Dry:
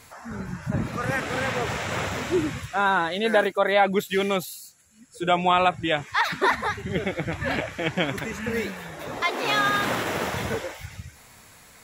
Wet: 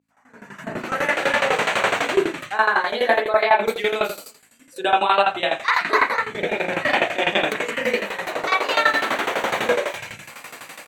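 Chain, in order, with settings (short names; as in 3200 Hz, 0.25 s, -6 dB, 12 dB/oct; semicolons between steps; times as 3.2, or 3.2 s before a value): opening faded in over 1.88 s; high shelf 8700 Hz -8 dB; on a send: frequency-shifting echo 0.101 s, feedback 43%, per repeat -59 Hz, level -22 dB; on the sum: reverb, pre-delay 38 ms, DRR -4 dB; in parallel at -3 dB: compressor, threshold -31 dBFS, peak gain reduction 20.5 dB; on the sum: hum 50 Hz, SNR 32 dB; HPF 400 Hz 12 dB/oct; tremolo saw down 11 Hz, depth 85%; AGC gain up to 12 dB; bell 900 Hz -3.5 dB 3 oct; notch 4800 Hz, Q 13; speed mistake 44.1 kHz file played as 48 kHz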